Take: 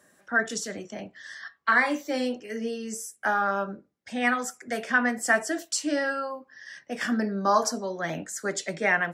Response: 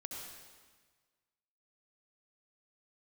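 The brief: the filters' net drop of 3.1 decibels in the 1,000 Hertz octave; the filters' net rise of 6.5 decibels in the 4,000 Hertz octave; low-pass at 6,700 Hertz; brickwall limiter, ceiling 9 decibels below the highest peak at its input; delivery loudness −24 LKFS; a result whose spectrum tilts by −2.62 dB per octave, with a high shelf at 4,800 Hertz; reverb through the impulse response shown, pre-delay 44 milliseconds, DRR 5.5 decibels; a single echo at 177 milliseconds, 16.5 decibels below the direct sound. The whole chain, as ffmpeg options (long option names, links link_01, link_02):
-filter_complex "[0:a]lowpass=6700,equalizer=frequency=1000:width_type=o:gain=-5,equalizer=frequency=4000:width_type=o:gain=6.5,highshelf=frequency=4800:gain=6,alimiter=limit=-18.5dB:level=0:latency=1,aecho=1:1:177:0.15,asplit=2[link_01][link_02];[1:a]atrim=start_sample=2205,adelay=44[link_03];[link_02][link_03]afir=irnorm=-1:irlink=0,volume=-4dB[link_04];[link_01][link_04]amix=inputs=2:normalize=0,volume=5dB"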